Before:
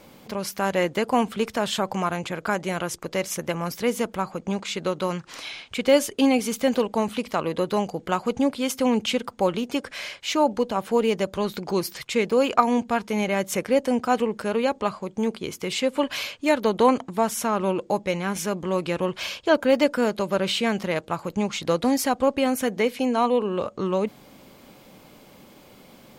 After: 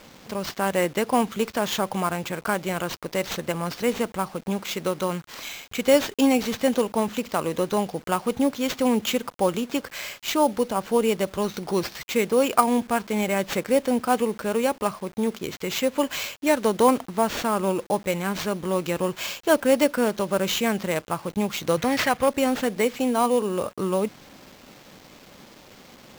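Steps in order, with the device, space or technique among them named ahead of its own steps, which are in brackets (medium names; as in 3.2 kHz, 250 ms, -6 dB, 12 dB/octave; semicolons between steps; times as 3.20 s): early 8-bit sampler (sample-rate reducer 10 kHz, jitter 0%; bit crusher 8-bit); 21.77–22.29 s: ten-band graphic EQ 125 Hz +11 dB, 250 Hz -6 dB, 2 kHz +9 dB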